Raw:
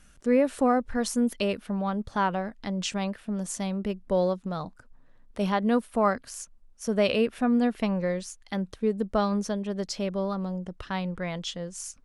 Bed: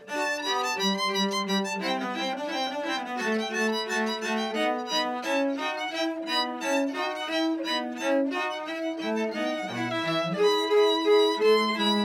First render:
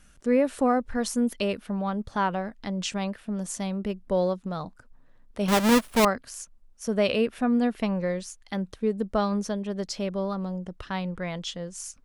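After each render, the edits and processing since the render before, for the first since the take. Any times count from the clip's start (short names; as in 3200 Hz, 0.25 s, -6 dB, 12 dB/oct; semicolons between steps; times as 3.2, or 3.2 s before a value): 5.48–6.05 half-waves squared off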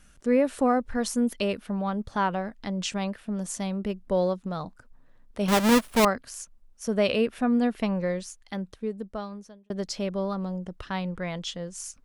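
8.14–9.7 fade out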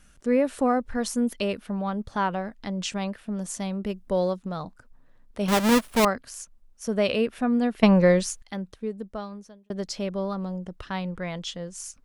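3.86–4.39 high shelf 5300 Hz +5.5 dB; 7.83–8.42 gain +10 dB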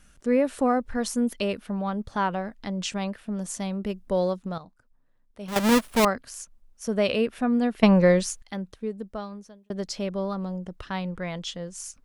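4.58–5.56 gain -11 dB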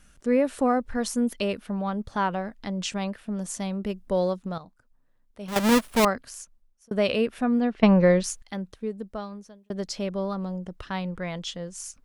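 6.27–6.91 fade out; 7.59–8.24 air absorption 140 m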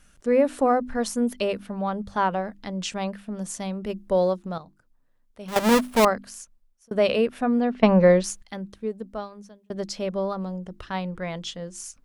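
notches 50/100/150/200/250/300/350 Hz; dynamic EQ 660 Hz, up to +4 dB, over -34 dBFS, Q 0.74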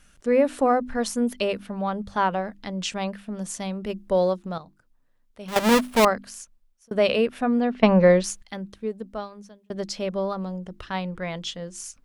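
bell 2900 Hz +2.5 dB 1.8 oct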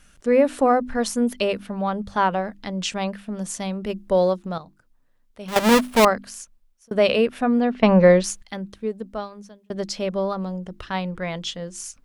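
gain +2.5 dB; limiter -3 dBFS, peak gain reduction 2.5 dB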